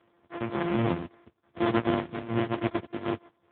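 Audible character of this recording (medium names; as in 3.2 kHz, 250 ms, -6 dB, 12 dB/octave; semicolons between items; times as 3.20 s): a buzz of ramps at a fixed pitch in blocks of 128 samples; random-step tremolo; aliases and images of a low sample rate 2.7 kHz, jitter 20%; AMR-NB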